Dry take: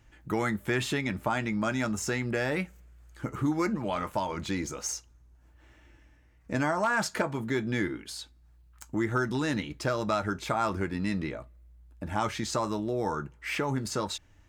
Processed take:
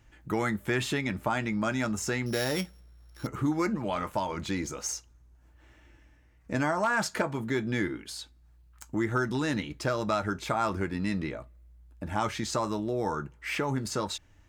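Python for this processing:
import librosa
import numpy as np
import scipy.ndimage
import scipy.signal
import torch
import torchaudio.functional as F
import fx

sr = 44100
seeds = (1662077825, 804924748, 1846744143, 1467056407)

y = fx.sample_sort(x, sr, block=8, at=(2.26, 3.27))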